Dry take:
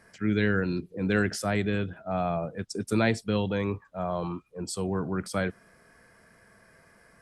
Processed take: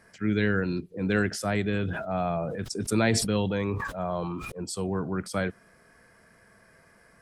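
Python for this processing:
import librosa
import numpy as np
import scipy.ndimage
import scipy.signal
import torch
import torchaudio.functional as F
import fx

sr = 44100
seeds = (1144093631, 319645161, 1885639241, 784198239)

y = fx.sustainer(x, sr, db_per_s=32.0, at=(1.73, 4.52))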